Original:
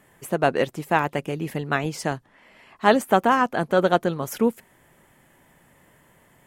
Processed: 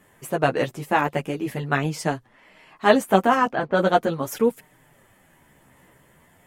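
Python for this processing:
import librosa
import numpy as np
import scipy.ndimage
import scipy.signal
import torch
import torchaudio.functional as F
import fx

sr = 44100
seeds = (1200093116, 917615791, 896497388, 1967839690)

y = fx.env_lowpass(x, sr, base_hz=600.0, full_db=-14.0, at=(3.5, 4.0), fade=0.02)
y = fx.chorus_voices(y, sr, voices=2, hz=0.43, base_ms=11, depth_ms=4.6, mix_pct=45)
y = y * 10.0 ** (3.5 / 20.0)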